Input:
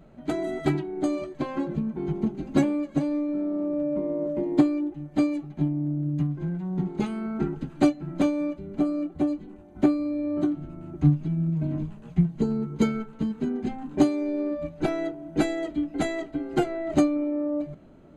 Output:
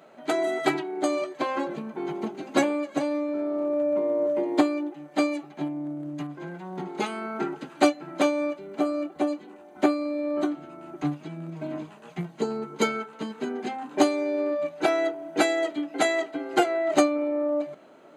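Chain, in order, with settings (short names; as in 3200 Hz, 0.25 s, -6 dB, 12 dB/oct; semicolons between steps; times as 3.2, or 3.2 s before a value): HPF 540 Hz 12 dB/oct; gain +8 dB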